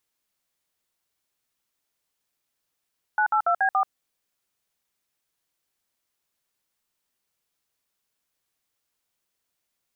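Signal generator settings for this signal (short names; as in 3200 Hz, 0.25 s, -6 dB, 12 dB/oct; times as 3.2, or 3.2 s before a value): DTMF "982B4", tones 84 ms, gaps 58 ms, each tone -21 dBFS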